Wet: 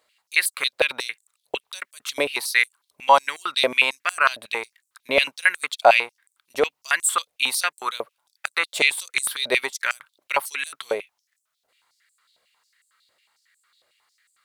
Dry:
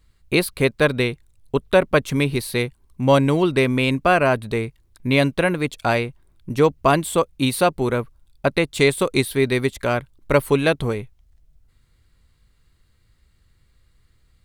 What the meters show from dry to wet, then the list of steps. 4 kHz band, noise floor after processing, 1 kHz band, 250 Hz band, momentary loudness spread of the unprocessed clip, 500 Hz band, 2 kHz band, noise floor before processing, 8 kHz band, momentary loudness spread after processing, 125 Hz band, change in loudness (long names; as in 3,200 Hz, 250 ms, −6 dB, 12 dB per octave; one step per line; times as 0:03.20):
+3.0 dB, −78 dBFS, +0.5 dB, −19.5 dB, 9 LU, −7.5 dB, +2.5 dB, −61 dBFS, +5.5 dB, 15 LU, below −30 dB, −2.0 dB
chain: boost into a limiter +7.5 dB
high-pass on a step sequencer 11 Hz 610–7,800 Hz
level −6.5 dB